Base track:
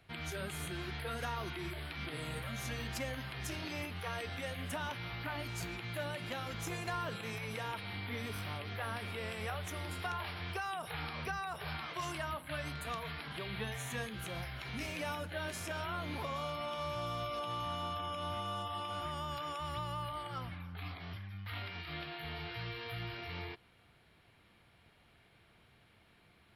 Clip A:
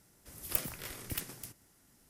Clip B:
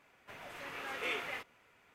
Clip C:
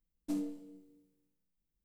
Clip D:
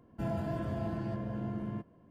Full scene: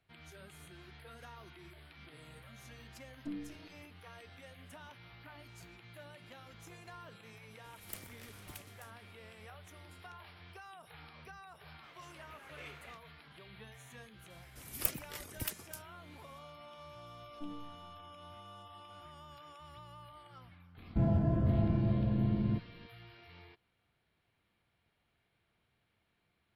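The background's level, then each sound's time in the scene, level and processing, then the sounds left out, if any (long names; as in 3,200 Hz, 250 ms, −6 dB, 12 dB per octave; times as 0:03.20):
base track −13 dB
0:02.97: mix in C −5 dB + treble cut that deepens with the level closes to 430 Hz, closed at −34.5 dBFS
0:07.38: mix in A −11.5 dB + highs frequency-modulated by the lows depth 0.93 ms
0:11.55: mix in B −13.5 dB
0:14.30: mix in A −0.5 dB + reverb reduction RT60 0.94 s
0:17.12: mix in C −16.5 dB + spectral tilt −3.5 dB per octave
0:20.77: mix in D −3 dB + spectral tilt −3.5 dB per octave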